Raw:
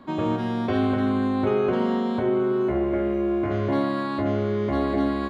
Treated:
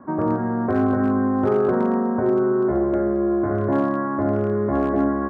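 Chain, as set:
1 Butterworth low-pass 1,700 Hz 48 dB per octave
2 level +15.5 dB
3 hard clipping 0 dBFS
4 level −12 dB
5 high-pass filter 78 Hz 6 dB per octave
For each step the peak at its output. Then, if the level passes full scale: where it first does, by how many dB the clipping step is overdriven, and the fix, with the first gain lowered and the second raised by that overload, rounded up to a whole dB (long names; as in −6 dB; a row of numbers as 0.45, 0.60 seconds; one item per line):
−11.5, +4.0, 0.0, −12.0, −10.5 dBFS
step 2, 4.0 dB
step 2 +11.5 dB, step 4 −8 dB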